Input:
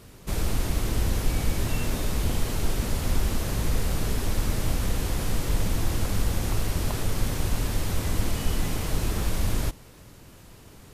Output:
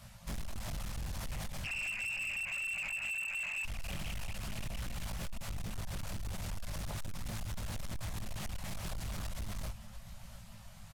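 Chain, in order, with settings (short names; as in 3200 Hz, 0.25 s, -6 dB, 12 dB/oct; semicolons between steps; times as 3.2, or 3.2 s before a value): limiter -21 dBFS, peak gain reduction 9.5 dB; reverb removal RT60 1.2 s; 1.64–3.64 inverted band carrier 2700 Hz; Chebyshev band-stop 220–540 Hz, order 5; resonator 220 Hz, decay 0.33 s, harmonics all, mix 40%; feedback echo 0.697 s, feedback 52%, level -16 dB; chorus 0.39 Hz, delay 17.5 ms, depth 4 ms; compressor 2:1, threshold -37 dBFS, peak gain reduction 4.5 dB; hard clip -40 dBFS, distortion -10 dB; Doppler distortion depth 0.62 ms; gain +5 dB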